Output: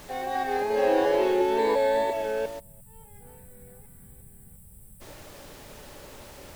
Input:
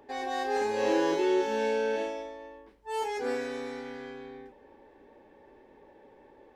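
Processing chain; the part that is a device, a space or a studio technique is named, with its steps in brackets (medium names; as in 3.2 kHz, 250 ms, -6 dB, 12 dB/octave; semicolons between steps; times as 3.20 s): chunks repeated in reverse 351 ms, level -2 dB; horn gramophone (band-pass 210–4100 Hz; peaking EQ 620 Hz +10.5 dB 0.37 oct; wow and flutter 28 cents; pink noise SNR 18 dB); 1.58–2.13 s: rippled EQ curve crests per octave 1, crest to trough 12 dB; 2.59–5.01 s: time-frequency box 230–7600 Hz -26 dB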